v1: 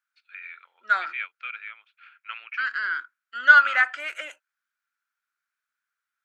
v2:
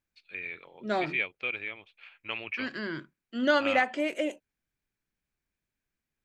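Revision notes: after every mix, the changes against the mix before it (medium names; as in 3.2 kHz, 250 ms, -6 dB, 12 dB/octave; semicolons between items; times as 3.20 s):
first voice +6.5 dB; master: remove resonant high-pass 1.4 kHz, resonance Q 8.4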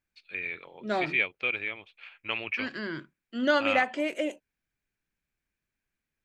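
first voice +3.5 dB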